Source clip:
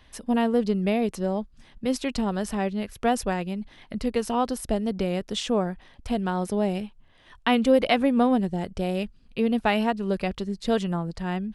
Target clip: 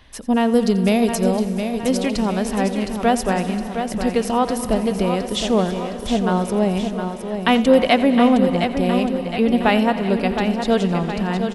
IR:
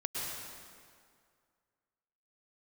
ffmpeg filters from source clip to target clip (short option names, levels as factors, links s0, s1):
-filter_complex "[0:a]asettb=1/sr,asplit=3[s0][s1][s2];[s0]atrim=end=0.524[s3];[s1]atrim=start=0.52:end=1.37,asetpts=PTS-STARTPTS,afade=t=in:d=0.004:c=qsin,afade=t=out:st=0.846:d=0.004:c=qsin,bass=f=250:g=2,treble=f=4000:g=11[s4];[s2]atrim=start=1.366[s5];[s3][s4]acrossfade=d=0.004:c1=hsin:c2=qsin[s6];[s6][s5]acrossfade=d=0.004:c1=qsin:c2=hsin,aecho=1:1:714|1428|2142|2856|3570|4284:0.422|0.219|0.114|0.0593|0.0308|0.016,asplit=2[s7][s8];[1:a]atrim=start_sample=2205,adelay=87[s9];[s8][s9]afir=irnorm=-1:irlink=0,volume=0.188[s10];[s7][s10]amix=inputs=2:normalize=0,volume=1.88"